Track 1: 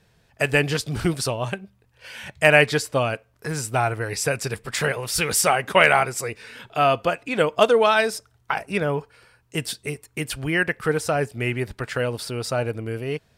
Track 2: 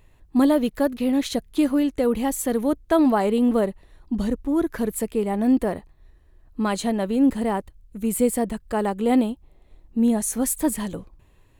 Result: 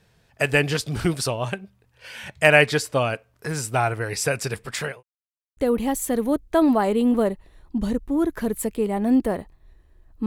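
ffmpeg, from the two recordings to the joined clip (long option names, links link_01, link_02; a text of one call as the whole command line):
ffmpeg -i cue0.wav -i cue1.wav -filter_complex "[0:a]apad=whole_dur=10.26,atrim=end=10.26,asplit=2[link_01][link_02];[link_01]atrim=end=5.03,asetpts=PTS-STARTPTS,afade=type=out:start_time=4.5:duration=0.53:curve=qsin[link_03];[link_02]atrim=start=5.03:end=5.57,asetpts=PTS-STARTPTS,volume=0[link_04];[1:a]atrim=start=1.94:end=6.63,asetpts=PTS-STARTPTS,afade=type=in:duration=0.004:curve=hsin[link_05];[link_03][link_04][link_05]concat=n=3:v=0:a=1" out.wav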